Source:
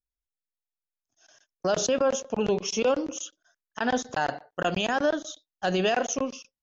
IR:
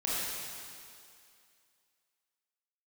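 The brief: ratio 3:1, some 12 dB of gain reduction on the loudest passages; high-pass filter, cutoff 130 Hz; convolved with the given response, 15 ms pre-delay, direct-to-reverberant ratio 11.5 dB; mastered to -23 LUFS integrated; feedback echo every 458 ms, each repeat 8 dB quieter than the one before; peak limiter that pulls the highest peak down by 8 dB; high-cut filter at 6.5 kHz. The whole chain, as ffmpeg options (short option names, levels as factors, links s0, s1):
-filter_complex "[0:a]highpass=130,lowpass=6500,acompressor=threshold=0.0141:ratio=3,alimiter=level_in=1.78:limit=0.0631:level=0:latency=1,volume=0.562,aecho=1:1:458|916|1374|1832|2290:0.398|0.159|0.0637|0.0255|0.0102,asplit=2[s0][s1];[1:a]atrim=start_sample=2205,adelay=15[s2];[s1][s2]afir=irnorm=-1:irlink=0,volume=0.112[s3];[s0][s3]amix=inputs=2:normalize=0,volume=6.31"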